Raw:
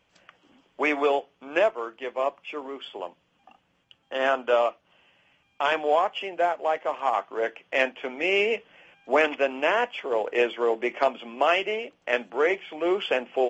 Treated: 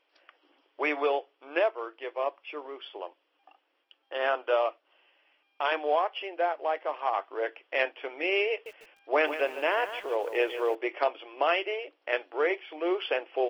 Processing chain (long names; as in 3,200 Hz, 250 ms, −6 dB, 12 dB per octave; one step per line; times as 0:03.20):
linear-phase brick-wall band-pass 280–5,700 Hz
0:08.51–0:10.75: feedback echo at a low word length 149 ms, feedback 35%, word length 7 bits, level −11 dB
level −4 dB